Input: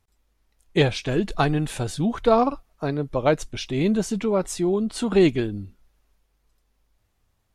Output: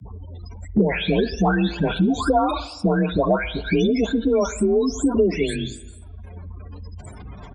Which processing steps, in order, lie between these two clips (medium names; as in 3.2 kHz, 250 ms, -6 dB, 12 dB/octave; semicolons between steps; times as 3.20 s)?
delay that grows with frequency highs late, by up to 548 ms; resampled via 22.05 kHz; spectral gate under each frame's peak -25 dB strong; in parallel at +1.5 dB: compression, threshold -30 dBFS, peak gain reduction 16 dB; on the sum: frequency shift +36 Hz; rippled EQ curve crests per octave 1.7, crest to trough 7 dB; on a send at -16.5 dB: reverberation RT60 0.70 s, pre-delay 50 ms; on the sum: three bands compressed up and down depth 100%